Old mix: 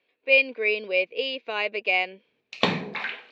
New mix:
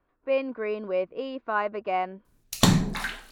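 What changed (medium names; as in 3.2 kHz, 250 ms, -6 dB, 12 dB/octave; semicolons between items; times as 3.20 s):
speech: add resonant low-pass 1.2 kHz, resonance Q 2.7; master: remove cabinet simulation 300–3800 Hz, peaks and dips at 310 Hz -4 dB, 470 Hz +8 dB, 1.4 kHz -4 dB, 2.4 kHz +10 dB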